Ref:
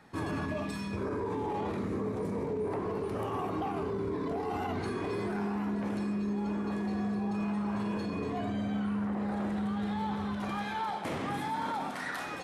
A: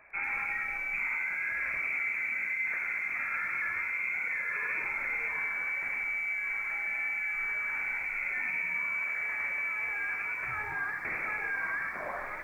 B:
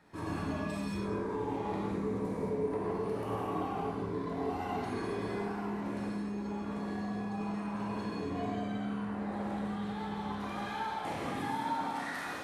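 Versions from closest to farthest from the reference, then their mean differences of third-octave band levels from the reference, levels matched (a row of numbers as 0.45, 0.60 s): B, A; 2.5, 13.5 dB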